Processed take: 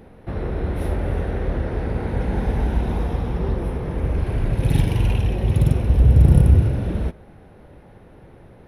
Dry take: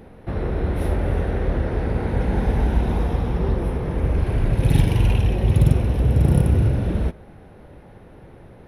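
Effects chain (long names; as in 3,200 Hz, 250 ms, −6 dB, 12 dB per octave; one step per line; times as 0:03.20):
0:05.89–0:06.60: low-shelf EQ 100 Hz +10.5 dB
level −1.5 dB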